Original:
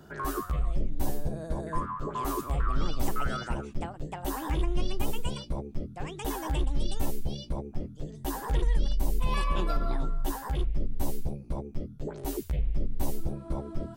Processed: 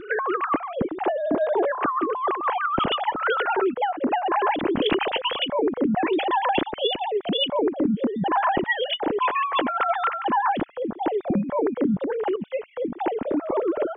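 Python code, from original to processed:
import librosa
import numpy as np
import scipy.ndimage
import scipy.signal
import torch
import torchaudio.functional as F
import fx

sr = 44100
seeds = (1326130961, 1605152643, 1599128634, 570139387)

y = fx.sine_speech(x, sr)
y = fx.low_shelf(y, sr, hz=280.0, db=9.5)
y = fx.over_compress(y, sr, threshold_db=-26.0, ratio=-1.0)
y = y * librosa.db_to_amplitude(4.0)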